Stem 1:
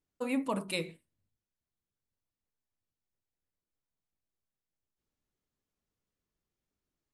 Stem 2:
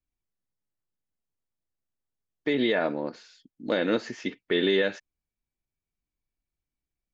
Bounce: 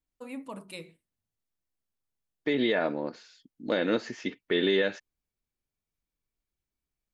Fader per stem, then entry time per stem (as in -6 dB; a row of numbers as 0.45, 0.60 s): -8.0, -1.5 dB; 0.00, 0.00 s